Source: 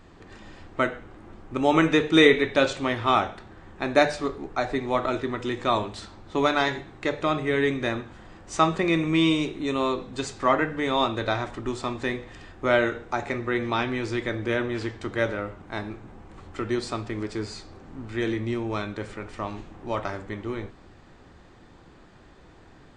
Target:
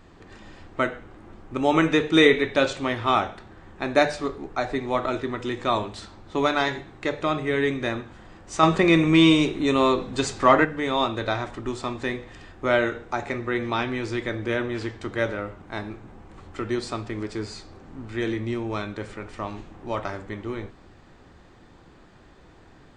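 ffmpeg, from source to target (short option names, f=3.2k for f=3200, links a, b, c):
-filter_complex "[0:a]asettb=1/sr,asplit=3[a][b][c];[a]atrim=end=8.634[d];[b]atrim=start=8.63:end=10.65,asetpts=PTS-STARTPTS,afade=t=in:d=0.004:c=qsin,afade=t=out:st=2.016:d=0.004:c=qsin,acontrast=39[e];[c]atrim=start=10.646[f];[d][e]acrossfade=d=0.004:c1=hsin:c2=qsin[g];[g][f]acrossfade=d=0.004:c1=qsin:c2=hsin"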